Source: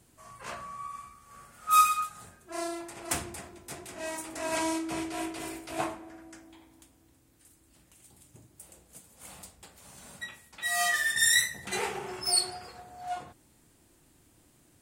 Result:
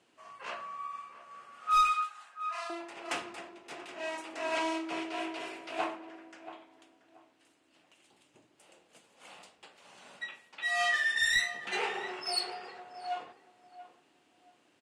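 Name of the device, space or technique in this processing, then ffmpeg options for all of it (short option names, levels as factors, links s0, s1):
intercom: -filter_complex "[0:a]asettb=1/sr,asplit=3[s0][s1][s2];[s0]atrim=end=1.944[s3];[s1]atrim=start=1.94:end=2.7,asetpts=PTS-STARTPTS,afade=t=in:d=0.004:c=qsin,afade=t=out:st=0.756:d=0.004:c=qsin,highpass=f=840:w=0.5412,highpass=f=840:w=1.3066[s4];[s2]atrim=start=2.696[s5];[s3][s4]acrossfade=d=0.004:c1=hsin:c2=qsin[s6];[s6][s5]acrossfade=d=0.004:c1=qsin:c2=hsin,highpass=360,lowpass=4100,equalizer=f=2800:t=o:w=0.32:g=6,asplit=2[s7][s8];[s8]adelay=681,lowpass=f=1800:p=1,volume=0.2,asplit=2[s9][s10];[s10]adelay=681,lowpass=f=1800:p=1,volume=0.24,asplit=2[s11][s12];[s12]adelay=681,lowpass=f=1800:p=1,volume=0.24[s13];[s7][s9][s11][s13]amix=inputs=4:normalize=0,asoftclip=type=tanh:threshold=0.106"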